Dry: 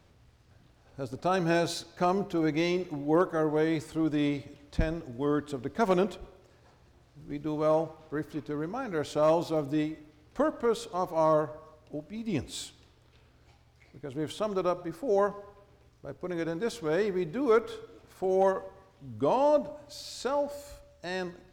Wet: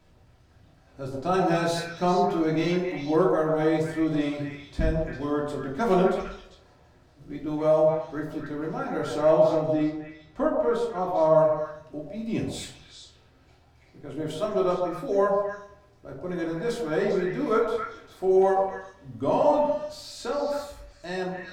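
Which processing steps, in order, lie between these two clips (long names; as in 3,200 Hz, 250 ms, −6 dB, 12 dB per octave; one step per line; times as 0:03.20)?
0:09.21–0:11.36: high-shelf EQ 4,000 Hz −9.5 dB
echo through a band-pass that steps 133 ms, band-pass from 680 Hz, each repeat 1.4 octaves, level 0 dB
rectangular room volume 390 cubic metres, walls furnished, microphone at 2.9 metres
level −3 dB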